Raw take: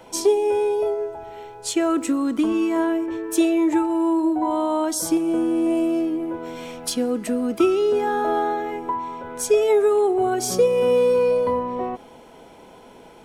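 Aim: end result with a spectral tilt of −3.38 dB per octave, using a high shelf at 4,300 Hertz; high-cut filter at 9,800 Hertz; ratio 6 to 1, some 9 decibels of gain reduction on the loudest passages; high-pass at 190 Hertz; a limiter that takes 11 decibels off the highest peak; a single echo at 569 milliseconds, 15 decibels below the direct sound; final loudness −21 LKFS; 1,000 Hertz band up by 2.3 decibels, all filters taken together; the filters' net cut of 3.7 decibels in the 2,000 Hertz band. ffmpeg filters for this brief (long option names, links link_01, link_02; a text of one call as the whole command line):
ffmpeg -i in.wav -af "highpass=190,lowpass=9800,equalizer=frequency=1000:width_type=o:gain=4,equalizer=frequency=2000:width_type=o:gain=-8,highshelf=frequency=4300:gain=7,acompressor=threshold=-23dB:ratio=6,alimiter=limit=-22dB:level=0:latency=1,aecho=1:1:569:0.178,volume=8dB" out.wav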